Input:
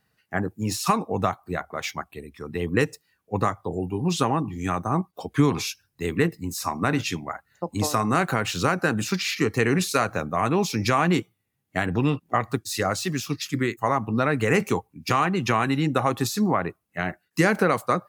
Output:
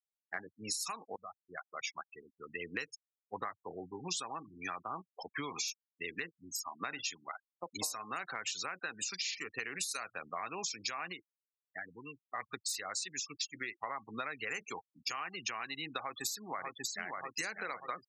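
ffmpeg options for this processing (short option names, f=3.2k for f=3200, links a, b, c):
-filter_complex "[0:a]asplit=2[a][b];[b]afade=t=in:st=15.99:d=0.01,afade=t=out:st=17.07:d=0.01,aecho=0:1:590|1180|1770|2360|2950|3540|4130|4720|5310:0.595662|0.357397|0.214438|0.128663|0.0771978|0.0463187|0.0277912|0.0166747|0.0100048[c];[a][c]amix=inputs=2:normalize=0,asplit=5[d][e][f][g][h];[d]atrim=end=1.16,asetpts=PTS-STARTPTS,afade=t=out:st=1.156:d=0.004:c=hsin:silence=0.0707946[i];[e]atrim=start=1.16:end=6.8,asetpts=PTS-STARTPTS,afade=t=in:d=1.6:c=qsin:silence=0.0707946,afade=t=out:st=4.86:d=0.78:silence=0.446684[j];[f]atrim=start=6.8:end=11.36,asetpts=PTS-STARTPTS,afade=t=in:d=0.004:c=hsin:silence=0.446684,afade=t=out:st=4.32:d=0.24:c=exp:silence=0.281838[k];[g]atrim=start=11.36:end=12.16,asetpts=PTS-STARTPTS,volume=-11dB[l];[h]atrim=start=12.16,asetpts=PTS-STARTPTS,afade=t=in:d=0.24:c=exp:silence=0.281838[m];[i][j][k][l][m]concat=n=5:v=0:a=1,afftfilt=real='re*gte(hypot(re,im),0.0316)':imag='im*gte(hypot(re,im),0.0316)':win_size=1024:overlap=0.75,aderivative,acompressor=threshold=-47dB:ratio=6,volume=10.5dB"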